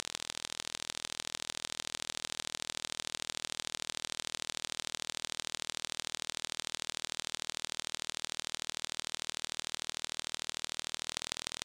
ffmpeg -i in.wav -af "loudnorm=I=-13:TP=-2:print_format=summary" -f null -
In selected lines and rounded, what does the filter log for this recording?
Input Integrated:    -38.3 LUFS
Input True Peak:     -11.4 dBTP
Input LRA:             0.1 LU
Input Threshold:     -48.3 LUFS